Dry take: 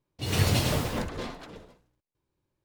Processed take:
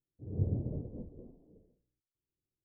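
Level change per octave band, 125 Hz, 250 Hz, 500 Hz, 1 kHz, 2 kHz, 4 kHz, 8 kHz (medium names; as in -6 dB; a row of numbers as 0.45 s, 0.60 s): -8.0 dB, -9.0 dB, -13.5 dB, under -30 dB, under -40 dB, under -40 dB, under -40 dB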